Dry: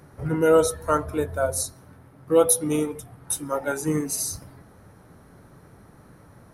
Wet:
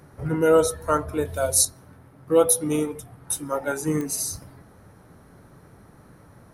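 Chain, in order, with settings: 1.25–1.65 resonant high shelf 2100 Hz +8.5 dB, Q 1.5; pops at 4.01, -19 dBFS

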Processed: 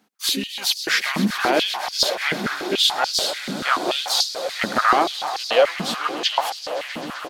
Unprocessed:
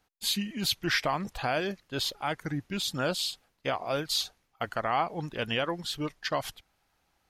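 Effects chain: harmoniser -4 st -16 dB, +5 st -9 dB; swelling echo 0.129 s, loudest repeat 5, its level -16 dB; stepped high-pass 6.9 Hz 220–4900 Hz; gain +6.5 dB

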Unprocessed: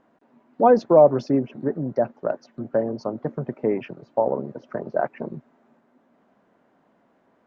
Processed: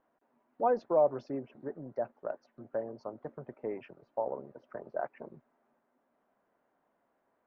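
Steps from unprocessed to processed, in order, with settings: LPF 1700 Hz 6 dB/oct; bell 180 Hz -11 dB 2.3 oct; gain -8.5 dB

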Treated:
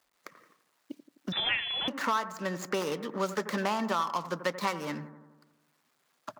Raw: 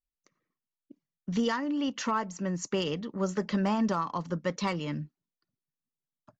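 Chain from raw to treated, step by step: median filter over 15 samples; HPF 1100 Hz 6 dB/oct; analogue delay 85 ms, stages 1024, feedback 49%, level -13.5 dB; 1.32–1.88 inverted band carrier 3700 Hz; three-band squash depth 70%; gain +7.5 dB

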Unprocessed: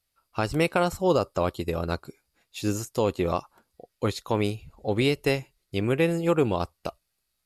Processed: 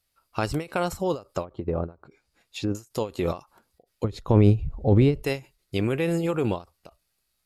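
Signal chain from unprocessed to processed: in parallel at 0 dB: negative-ratio compressor -26 dBFS, ratio -0.5; 1.43–2.75 on the sum: treble ducked by the level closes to 1000 Hz, closed at -20 dBFS; 4.04–5.23 tilt -4 dB/oct; ending taper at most 230 dB/s; gain -5 dB

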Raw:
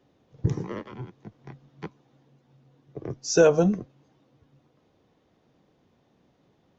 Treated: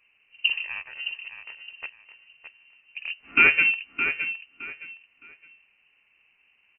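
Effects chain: 3.19–3.7 spectral whitening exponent 0.6; on a send: feedback echo 0.615 s, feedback 25%, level -9 dB; on the sum: inverted band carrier 2900 Hz

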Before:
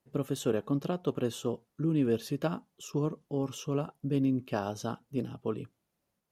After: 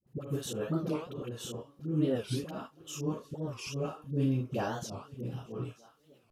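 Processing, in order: on a send: thinning echo 0.92 s, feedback 49%, high-pass 800 Hz, level -21.5 dB; on the sum: reverb, pre-delay 3 ms, DRR 0.5 dB; in parallel at -1.5 dB: compressor 8:1, threshold -36 dBFS, peak gain reduction 15.5 dB; on the sum: auto swell 0.146 s; dispersion highs, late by 71 ms, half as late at 660 Hz; record warp 45 rpm, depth 250 cents; gain -4.5 dB

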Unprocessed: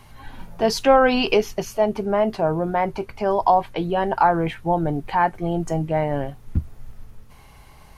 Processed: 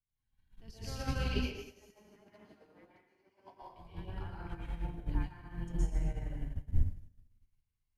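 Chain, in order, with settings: octaver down 2 oct, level +1 dB; passive tone stack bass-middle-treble 6-0-2; 1.27–3.62 LFO high-pass saw down 7.9 Hz 220–2500 Hz; plate-style reverb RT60 1.7 s, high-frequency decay 0.95×, pre-delay 0.105 s, DRR -7.5 dB; upward expander 2.5:1, over -45 dBFS; gain +1 dB

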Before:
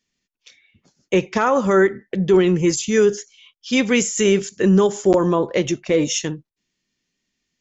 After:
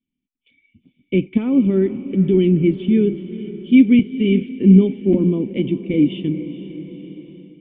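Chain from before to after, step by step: vocal tract filter i; low shelf 240 Hz +8 dB; diffused feedback echo 0.454 s, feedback 60%, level -14 dB; AGC gain up to 7 dB; 3.99–5.94 three-band expander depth 40%; gain +1 dB

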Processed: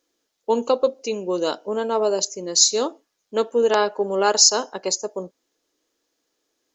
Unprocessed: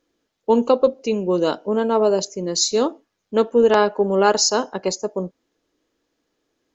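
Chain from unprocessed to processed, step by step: tone controls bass -10 dB, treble +9 dB; gain -2.5 dB

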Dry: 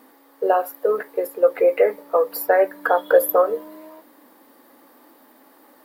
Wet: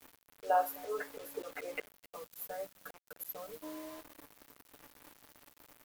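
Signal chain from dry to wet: spectral gain 1.8–3.63, 250–6000 Hz -21 dB; dynamic EQ 450 Hz, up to -4 dB, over -30 dBFS, Q 1.8; comb 6.8 ms, depth 100%; auto swell 0.211 s; speakerphone echo 0.26 s, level -21 dB; bit-crush 7-bit; gain -9 dB

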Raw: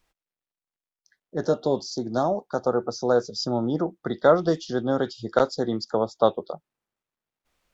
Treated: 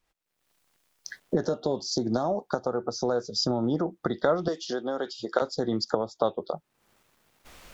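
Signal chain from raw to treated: recorder AGC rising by 57 dB/s; 4.48–5.42 HPF 350 Hz 12 dB/oct; gain -7 dB

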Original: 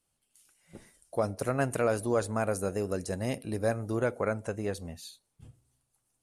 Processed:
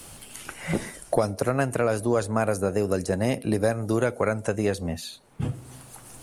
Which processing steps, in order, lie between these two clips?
three-band squash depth 100%; gain +5.5 dB

